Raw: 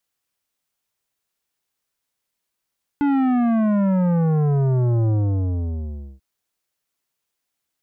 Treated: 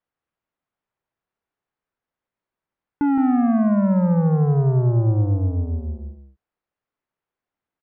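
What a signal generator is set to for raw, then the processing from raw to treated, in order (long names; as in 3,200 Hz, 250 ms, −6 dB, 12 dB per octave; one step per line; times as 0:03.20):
bass drop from 290 Hz, over 3.19 s, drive 12 dB, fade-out 1.11 s, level −17 dB
low-pass filter 1,600 Hz 12 dB per octave
on a send: single-tap delay 167 ms −7.5 dB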